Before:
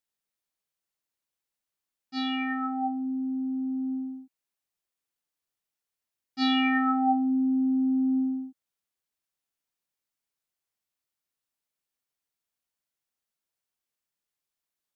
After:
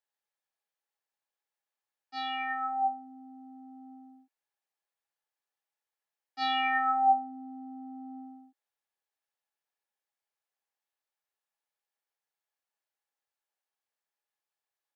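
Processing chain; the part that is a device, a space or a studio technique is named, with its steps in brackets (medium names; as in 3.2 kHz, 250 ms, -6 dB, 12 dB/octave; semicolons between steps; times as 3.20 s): high-pass 410 Hz 24 dB/octave; inside a helmet (treble shelf 3.5 kHz -9 dB; small resonant body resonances 830/1700 Hz, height 9 dB, ringing for 45 ms); dynamic bell 200 Hz, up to -6 dB, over -54 dBFS, Q 1.3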